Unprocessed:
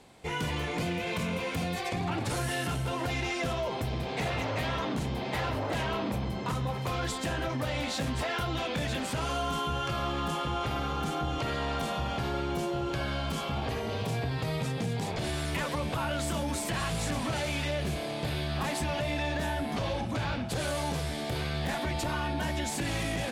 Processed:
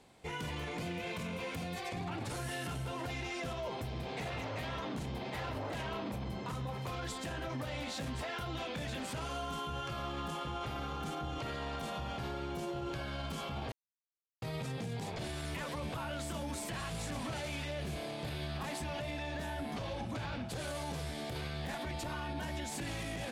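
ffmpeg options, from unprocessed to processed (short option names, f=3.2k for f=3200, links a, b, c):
-filter_complex "[0:a]asplit=3[a][b][c];[a]atrim=end=13.72,asetpts=PTS-STARTPTS,afade=t=out:st=13.716:d=0.004:c=hsin[d];[b]atrim=start=13.72:end=14.42,asetpts=PTS-STARTPTS,volume=0[e];[c]atrim=start=14.42,asetpts=PTS-STARTPTS,afade=t=in:d=0.004:c=hsin[f];[d][e][f]concat=n=3:v=0:a=1,alimiter=level_in=1dB:limit=-24dB:level=0:latency=1:release=32,volume=-1dB,volume=-6dB"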